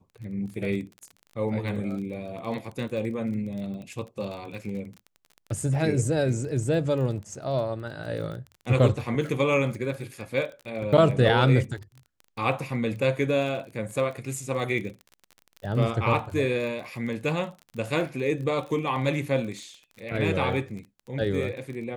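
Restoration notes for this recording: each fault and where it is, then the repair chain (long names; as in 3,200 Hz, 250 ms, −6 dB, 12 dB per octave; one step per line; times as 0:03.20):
surface crackle 25 per second −35 dBFS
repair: click removal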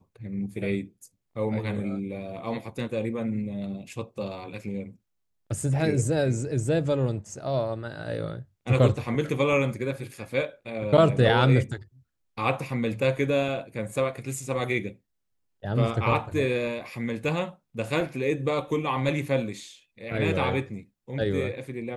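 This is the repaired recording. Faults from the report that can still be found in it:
none of them is left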